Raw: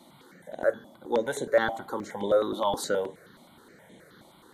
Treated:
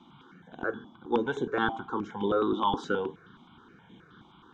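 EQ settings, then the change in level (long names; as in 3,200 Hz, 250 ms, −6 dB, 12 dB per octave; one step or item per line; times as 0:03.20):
low-pass filter 4,200 Hz 24 dB per octave
dynamic equaliser 400 Hz, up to +7 dB, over −37 dBFS, Q 1
phaser with its sweep stopped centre 2,900 Hz, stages 8
+3.0 dB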